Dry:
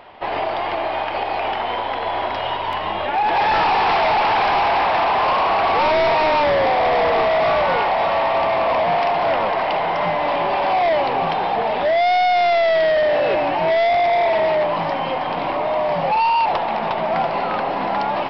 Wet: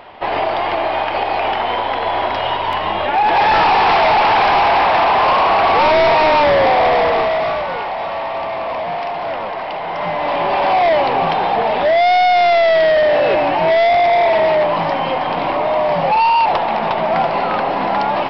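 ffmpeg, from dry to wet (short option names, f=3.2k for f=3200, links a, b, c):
-af "volume=12.5dB,afade=t=out:st=6.8:d=0.87:silence=0.375837,afade=t=in:st=9.8:d=0.84:silence=0.398107"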